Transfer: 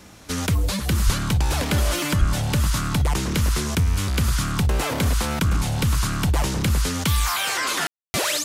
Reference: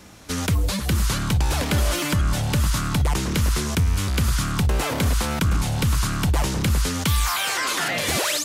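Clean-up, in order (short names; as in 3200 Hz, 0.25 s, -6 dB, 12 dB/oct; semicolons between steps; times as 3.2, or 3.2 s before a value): 1.05–1.17 HPF 140 Hz 24 dB/oct; 2.19–2.31 HPF 140 Hz 24 dB/oct; room tone fill 7.87–8.14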